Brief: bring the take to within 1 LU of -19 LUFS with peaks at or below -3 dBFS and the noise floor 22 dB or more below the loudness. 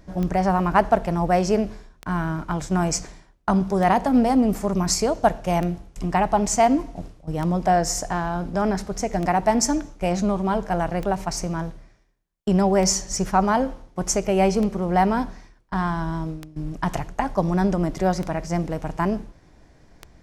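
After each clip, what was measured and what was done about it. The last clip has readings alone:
clicks found 12; loudness -23.0 LUFS; peak level -5.0 dBFS; loudness target -19.0 LUFS
-> de-click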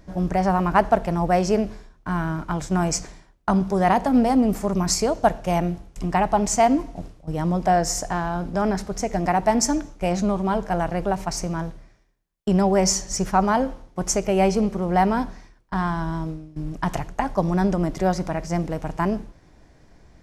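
clicks found 0; loudness -23.0 LUFS; peak level -5.0 dBFS; loudness target -19.0 LUFS
-> trim +4 dB; peak limiter -3 dBFS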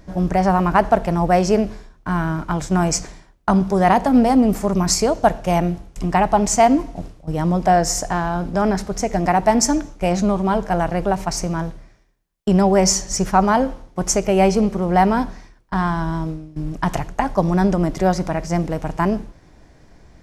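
loudness -19.0 LUFS; peak level -3.0 dBFS; noise floor -51 dBFS

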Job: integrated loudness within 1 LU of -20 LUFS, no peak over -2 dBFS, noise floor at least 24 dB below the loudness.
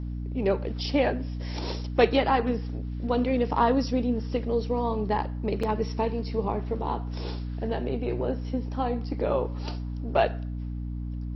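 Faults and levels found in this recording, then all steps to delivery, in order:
dropouts 1; longest dropout 4.6 ms; hum 60 Hz; highest harmonic 300 Hz; hum level -30 dBFS; loudness -28.0 LUFS; peak level -7.0 dBFS; loudness target -20.0 LUFS
-> interpolate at 5.63 s, 4.6 ms; de-hum 60 Hz, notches 5; trim +8 dB; peak limiter -2 dBFS

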